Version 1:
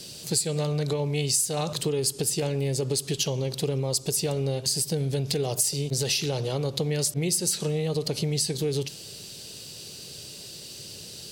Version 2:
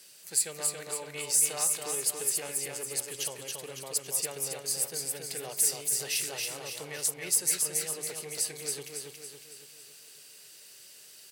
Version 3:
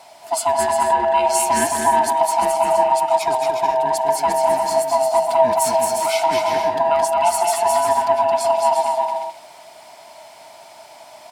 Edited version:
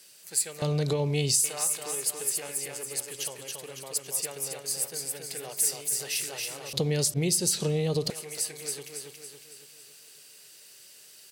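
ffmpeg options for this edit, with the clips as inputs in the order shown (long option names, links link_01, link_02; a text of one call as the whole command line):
ffmpeg -i take0.wav -i take1.wav -filter_complex "[0:a]asplit=2[link_01][link_02];[1:a]asplit=3[link_03][link_04][link_05];[link_03]atrim=end=0.622[link_06];[link_01]atrim=start=0.618:end=1.442[link_07];[link_04]atrim=start=1.438:end=6.732[link_08];[link_02]atrim=start=6.728:end=8.102[link_09];[link_05]atrim=start=8.098[link_10];[link_06][link_07]acrossfade=duration=0.004:curve1=hsin:curve2=hsin[link_11];[link_11][link_08]acrossfade=duration=0.004:curve1=hsin:curve2=hsin[link_12];[link_12][link_09]acrossfade=duration=0.004:curve1=hsin:curve2=hsin[link_13];[link_13][link_10]acrossfade=duration=0.004:curve1=hsin:curve2=hsin" out.wav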